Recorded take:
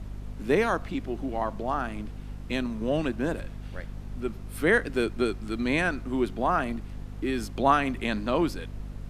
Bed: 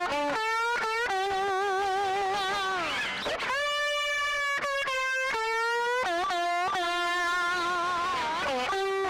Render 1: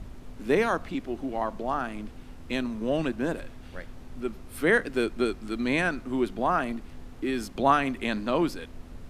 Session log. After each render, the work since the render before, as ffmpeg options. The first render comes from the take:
ffmpeg -i in.wav -af "bandreject=frequency=50:width_type=h:width=4,bandreject=frequency=100:width_type=h:width=4,bandreject=frequency=150:width_type=h:width=4,bandreject=frequency=200:width_type=h:width=4" out.wav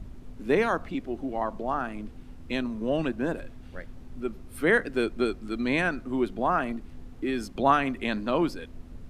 ffmpeg -i in.wav -af "afftdn=noise_reduction=6:noise_floor=-45" out.wav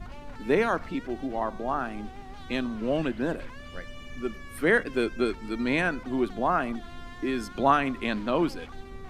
ffmpeg -i in.wav -i bed.wav -filter_complex "[1:a]volume=-19dB[link_01];[0:a][link_01]amix=inputs=2:normalize=0" out.wav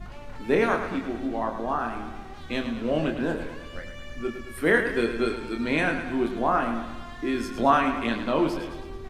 ffmpeg -i in.wav -filter_complex "[0:a]asplit=2[link_01][link_02];[link_02]adelay=26,volume=-5dB[link_03];[link_01][link_03]amix=inputs=2:normalize=0,asplit=2[link_04][link_05];[link_05]aecho=0:1:108|216|324|432|540|648:0.355|0.195|0.107|0.059|0.0325|0.0179[link_06];[link_04][link_06]amix=inputs=2:normalize=0" out.wav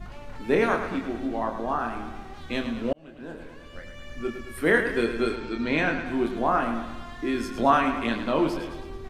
ffmpeg -i in.wav -filter_complex "[0:a]asettb=1/sr,asplit=3[link_01][link_02][link_03];[link_01]atrim=end=5.364[link_04];[link_02]atrim=start=5.36:end=6.06,asetpts=PTS-STARTPTS,afade=type=in:duration=0.004:curve=qsin,afade=type=out:start_time=0.696:duration=0.004:curve=qsin,lowpass=frequency=6700:width=0.5412,lowpass=frequency=6700:width=1.3066[link_05];[link_03]atrim=start=6.056[link_06];[link_04][link_05]acrossfade=duration=0.004:curve1=hsin:curve2=qsin[link_07];[link_07][link_06]acrossfade=duration=0.004:curve1=qsin:curve2=hsin,asplit=2[link_08][link_09];[link_08]atrim=end=2.93,asetpts=PTS-STARTPTS,afade=type=out:start_time=2.926:duration=0.004:curve=hsin[link_10];[link_09]atrim=start=2.93,asetpts=PTS-STARTPTS,afade=type=in:duration=1.35[link_11];[link_10][link_11]concat=n=2:v=0:a=1" out.wav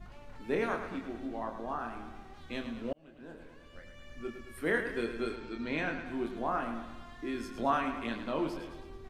ffmpeg -i in.wav -af "volume=-9.5dB" out.wav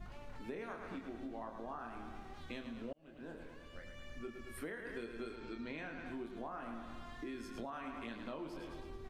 ffmpeg -i in.wav -af "alimiter=limit=-24dB:level=0:latency=1:release=185,acompressor=threshold=-43dB:ratio=4" out.wav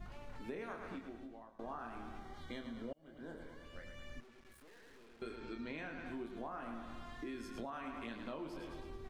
ffmpeg -i in.wav -filter_complex "[0:a]asettb=1/sr,asplit=3[link_01][link_02][link_03];[link_01]atrim=end=2.194[link_04];[link_02]atrim=start=2.19:end=3.65,asetpts=PTS-STARTPTS,afade=type=in:duration=0.004:curve=qsin,afade=type=out:start_time=1.456:duration=0.004:curve=qsin,asuperstop=centerf=2600:order=12:qfactor=6.4[link_05];[link_03]atrim=start=3.646[link_06];[link_04][link_05]acrossfade=duration=0.004:curve1=hsin:curve2=qsin[link_07];[link_07][link_06]acrossfade=duration=0.004:curve1=qsin:curve2=hsin,asettb=1/sr,asplit=3[link_08][link_09][link_10];[link_08]atrim=end=4.204[link_11];[link_09]atrim=start=4.2:end=5.22,asetpts=PTS-STARTPTS,afade=type=in:duration=0.004:curve=qsin,afade=type=out:start_time=1.016:duration=0.004:curve=qsin,aeval=exprs='(tanh(1000*val(0)+0.7)-tanh(0.7))/1000':channel_layout=same[link_12];[link_10]atrim=start=5.216[link_13];[link_11][link_12]acrossfade=duration=0.004:curve1=hsin:curve2=qsin[link_14];[link_14][link_13]acrossfade=duration=0.004:curve1=qsin:curve2=hsin,asplit=2[link_15][link_16];[link_15]atrim=end=1.59,asetpts=PTS-STARTPTS,afade=type=out:start_time=0.86:duration=0.73:silence=0.11885[link_17];[link_16]atrim=start=1.59,asetpts=PTS-STARTPTS,afade=type=in:duration=0.004:curve=hsin:silence=0.11885[link_18];[link_17][link_18]concat=n=2:v=0:a=1" out.wav

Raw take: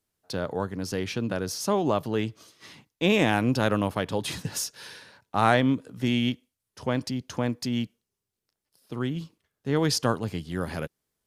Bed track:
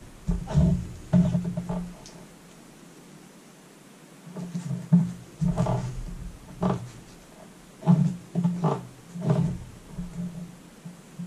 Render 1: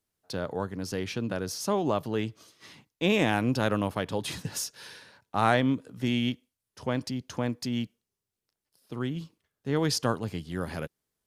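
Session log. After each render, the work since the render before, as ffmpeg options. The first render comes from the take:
ffmpeg -i in.wav -af "volume=-2.5dB" out.wav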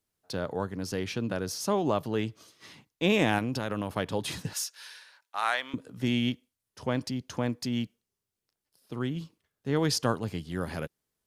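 ffmpeg -i in.wav -filter_complex "[0:a]asettb=1/sr,asplit=3[link_01][link_02][link_03];[link_01]atrim=end=3.384[link_04];[link_02]atrim=start=3.38:end=3.96,asetpts=PTS-STARTPTS,afade=type=in:duration=0.004:curve=qsin,afade=type=out:start_time=0.576:duration=0.004:curve=qsin,acompressor=threshold=-26dB:ratio=6:attack=3.2:release=140:knee=1:detection=peak[link_05];[link_03]atrim=start=3.956[link_06];[link_04][link_05]acrossfade=duration=0.004:curve1=hsin:curve2=qsin[link_07];[link_07][link_06]acrossfade=duration=0.004:curve1=qsin:curve2=hsin,asettb=1/sr,asplit=3[link_08][link_09][link_10];[link_08]atrim=end=4.534[link_11];[link_09]atrim=start=4.53:end=5.74,asetpts=PTS-STARTPTS,afade=type=in:duration=0.004:curve=qsin,afade=type=out:start_time=1.206:duration=0.004:curve=qsin,highpass=1100[link_12];[link_10]atrim=start=5.736[link_13];[link_11][link_12]acrossfade=duration=0.004:curve1=hsin:curve2=qsin[link_14];[link_14][link_13]acrossfade=duration=0.004:curve1=qsin:curve2=hsin" out.wav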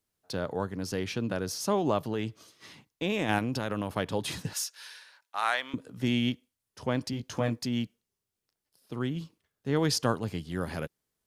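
ffmpeg -i in.wav -filter_complex "[0:a]asplit=3[link_01][link_02][link_03];[link_01]afade=type=out:start_time=2.12:duration=0.02[link_04];[link_02]acompressor=threshold=-27dB:ratio=2.5:attack=3.2:release=140:knee=1:detection=peak,afade=type=in:start_time=2.12:duration=0.02,afade=type=out:start_time=3.28:duration=0.02[link_05];[link_03]afade=type=in:start_time=3.28:duration=0.02[link_06];[link_04][link_05][link_06]amix=inputs=3:normalize=0,asettb=1/sr,asplit=3[link_07][link_08][link_09];[link_07]atrim=end=7.114[link_10];[link_08]atrim=start=7.11:end=7.59,asetpts=PTS-STARTPTS,afade=type=in:duration=0.004:curve=qsin,afade=type=out:start_time=0.476:duration=0.004:curve=qsin,asplit=2[link_11][link_12];[link_12]adelay=18,volume=-4dB[link_13];[link_11][link_13]amix=inputs=2:normalize=0,atrim=end_sample=21168[link_14];[link_09]atrim=start=7.586[link_15];[link_10][link_14]acrossfade=duration=0.004:curve1=hsin:curve2=qsin[link_16];[link_16][link_15]acrossfade=duration=0.004:curve1=qsin:curve2=hsin" out.wav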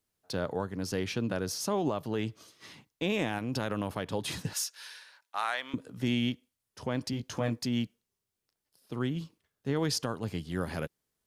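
ffmpeg -i in.wav -af "alimiter=limit=-19.5dB:level=0:latency=1:release=185" out.wav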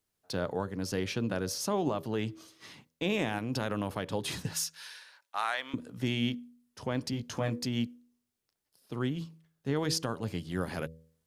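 ffmpeg -i in.wav -af "bandreject=frequency=80.8:width_type=h:width=4,bandreject=frequency=161.6:width_type=h:width=4,bandreject=frequency=242.4:width_type=h:width=4,bandreject=frequency=323.2:width_type=h:width=4,bandreject=frequency=404:width_type=h:width=4,bandreject=frequency=484.8:width_type=h:width=4,bandreject=frequency=565.6:width_type=h:width=4" out.wav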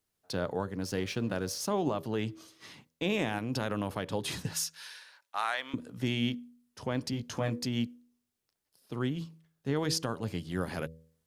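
ffmpeg -i in.wav -filter_complex "[0:a]asettb=1/sr,asplit=3[link_01][link_02][link_03];[link_01]atrim=end=0.814[link_04];[link_02]atrim=start=0.81:end=1.71,asetpts=PTS-STARTPTS,afade=type=in:duration=0.004:curve=qsin,afade=type=out:start_time=0.896:duration=0.004:curve=qsin,aeval=exprs='sgn(val(0))*max(abs(val(0))-0.00224,0)':channel_layout=same[link_05];[link_03]atrim=start=1.706[link_06];[link_04][link_05]acrossfade=duration=0.004:curve1=hsin:curve2=qsin[link_07];[link_07][link_06]acrossfade=duration=0.004:curve1=qsin:curve2=hsin" out.wav

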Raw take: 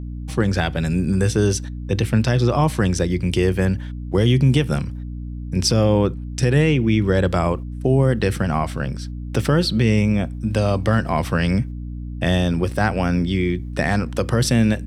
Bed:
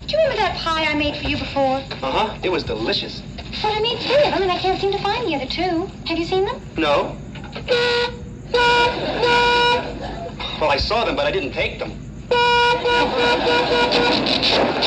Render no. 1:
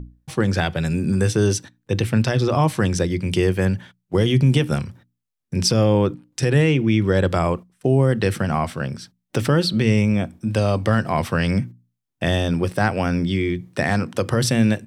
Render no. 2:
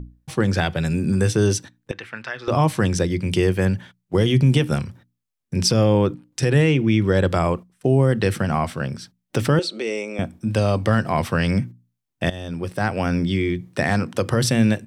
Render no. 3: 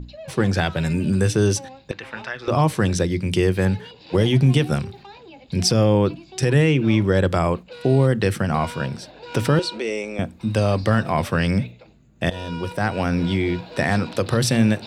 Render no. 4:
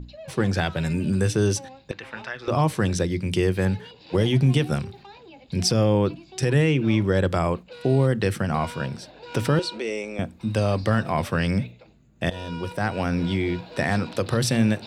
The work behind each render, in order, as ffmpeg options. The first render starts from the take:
ffmpeg -i in.wav -af "bandreject=frequency=60:width_type=h:width=6,bandreject=frequency=120:width_type=h:width=6,bandreject=frequency=180:width_type=h:width=6,bandreject=frequency=240:width_type=h:width=6,bandreject=frequency=300:width_type=h:width=6" out.wav
ffmpeg -i in.wav -filter_complex "[0:a]asettb=1/sr,asplit=3[link_01][link_02][link_03];[link_01]atrim=end=1.914[link_04];[link_02]atrim=start=1.91:end=2.48,asetpts=PTS-STARTPTS,afade=type=in:duration=0.004:curve=qsin,afade=type=out:start_time=0.566:duration=0.004:curve=qsin,bandpass=frequency=1600:width_type=q:width=1.6[link_05];[link_03]atrim=start=2.476[link_06];[link_04][link_05]acrossfade=duration=0.004:curve1=hsin:curve2=qsin[link_07];[link_07][link_06]acrossfade=duration=0.004:curve1=qsin:curve2=hsin,asettb=1/sr,asplit=3[link_08][link_09][link_10];[link_08]atrim=end=9.594[link_11];[link_09]atrim=start=9.59:end=10.19,asetpts=PTS-STARTPTS,afade=type=in:duration=0.004:curve=qsin,afade=type=out:start_time=0.596:duration=0.004:curve=qsin,highpass=frequency=350:width=0.5412,highpass=frequency=350:width=1.3066,equalizer=frequency=1000:width_type=q:width=4:gain=-7,equalizer=frequency=1700:width_type=q:width=4:gain=-9,equalizer=frequency=3100:width_type=q:width=4:gain=-6,equalizer=frequency=4800:width_type=q:width=4:gain=-6,lowpass=frequency=8700:width=0.5412,lowpass=frequency=8700:width=1.3066[link_12];[link_10]atrim=start=10.186[link_13];[link_11][link_12]acrossfade=duration=0.004:curve1=hsin:curve2=qsin[link_14];[link_14][link_13]acrossfade=duration=0.004:curve1=qsin:curve2=hsin,asplit=2[link_15][link_16];[link_15]atrim=end=12.3,asetpts=PTS-STARTPTS,afade=type=out:start_time=12.296:duration=0.004:curve=hsin:silence=0.158489[link_17];[link_16]atrim=start=12.3,asetpts=PTS-STARTPTS,afade=type=in:duration=0.83:silence=0.158489[link_18];[link_17][link_18]concat=n=2:v=0:a=1" out.wav
ffmpeg -i in.wav -i bed.wav -filter_complex "[1:a]volume=-22dB[link_01];[0:a][link_01]amix=inputs=2:normalize=0" out.wav
ffmpeg -i in.wav -af "volume=-3dB" out.wav

